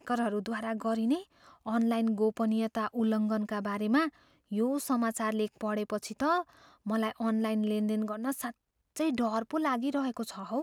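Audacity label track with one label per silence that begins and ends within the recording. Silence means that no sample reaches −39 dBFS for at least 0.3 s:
1.220000	1.660000	silence
4.090000	4.520000	silence
6.420000	6.860000	silence
8.510000	8.960000	silence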